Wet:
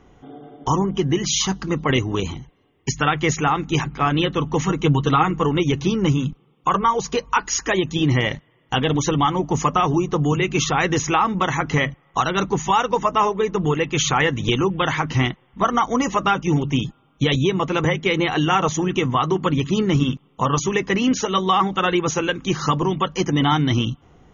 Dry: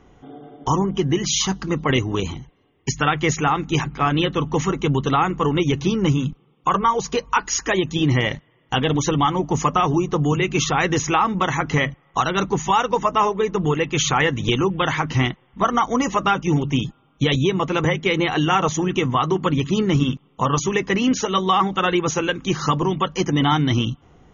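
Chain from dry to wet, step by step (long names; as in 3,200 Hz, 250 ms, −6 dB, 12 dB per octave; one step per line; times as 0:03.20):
0:04.65–0:05.43: comb filter 6.4 ms, depth 56%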